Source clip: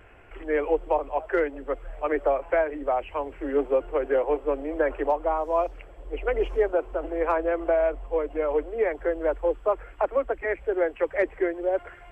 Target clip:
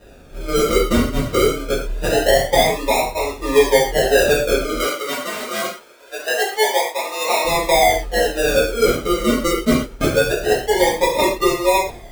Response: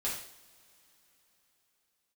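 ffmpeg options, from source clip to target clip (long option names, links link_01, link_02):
-filter_complex "[0:a]acrusher=samples=40:mix=1:aa=0.000001:lfo=1:lforange=24:lforate=0.24,asettb=1/sr,asplit=3[link_01][link_02][link_03];[link_01]atrim=end=4.794[link_04];[link_02]atrim=start=4.79:end=7.45,asetpts=PTS-STARTPTS,afade=type=in:duration=0.004:curve=qsin,afade=type=out:start_time=2.656:duration=0.004:curve=qsin,highpass=620[link_05];[link_03]atrim=start=7.446[link_06];[link_04][link_05]acrossfade=duration=0.004:curve1=hsin:curve2=qsin[link_07];[link_07][link_06]acrossfade=duration=0.004:curve1=qsin:curve2=hsin[link_08];[1:a]atrim=start_sample=2205,atrim=end_sample=6174[link_09];[link_08][link_09]afir=irnorm=-1:irlink=0,volume=5dB"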